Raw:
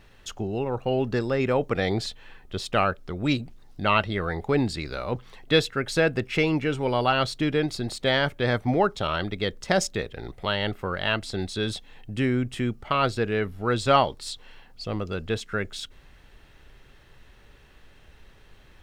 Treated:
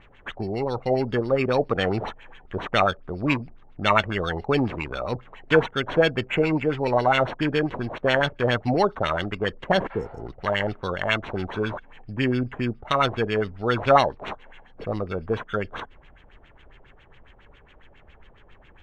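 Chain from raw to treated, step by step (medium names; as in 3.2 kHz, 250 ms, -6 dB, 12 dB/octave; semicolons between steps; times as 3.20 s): sample-and-hold 9×; LFO low-pass sine 7.3 Hz 610–3400 Hz; spectral replace 9.93–10.20 s, 520–5200 Hz both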